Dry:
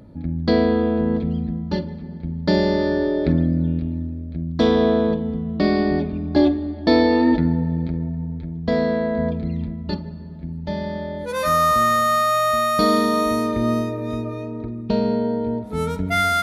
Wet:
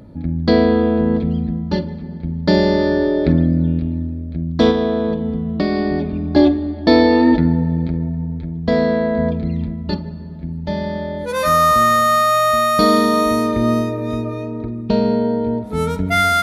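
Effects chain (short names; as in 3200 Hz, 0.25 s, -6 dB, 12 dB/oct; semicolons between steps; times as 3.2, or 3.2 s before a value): 4.7–6.19 compressor 4:1, threshold -19 dBFS, peak gain reduction 5.5 dB; gain +4 dB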